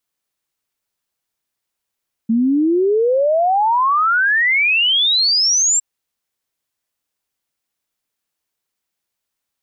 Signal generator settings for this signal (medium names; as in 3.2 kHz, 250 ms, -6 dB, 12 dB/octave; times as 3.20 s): log sweep 220 Hz -> 7.6 kHz 3.51 s -12 dBFS